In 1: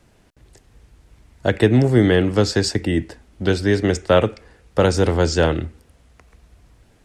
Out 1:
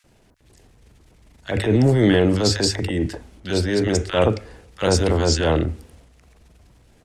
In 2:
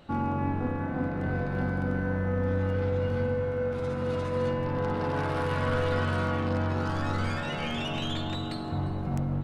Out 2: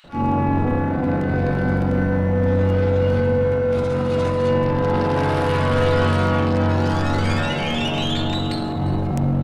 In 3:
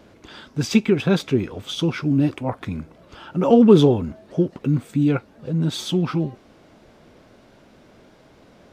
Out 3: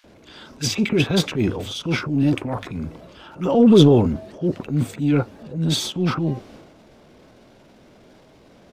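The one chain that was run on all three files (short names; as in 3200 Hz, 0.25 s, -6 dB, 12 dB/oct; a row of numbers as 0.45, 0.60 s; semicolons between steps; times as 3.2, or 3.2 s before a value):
notches 50/100 Hz; transient shaper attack -8 dB, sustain +7 dB; bands offset in time highs, lows 40 ms, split 1400 Hz; match loudness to -20 LUFS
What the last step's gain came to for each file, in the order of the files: -0.5, +10.0, +1.0 dB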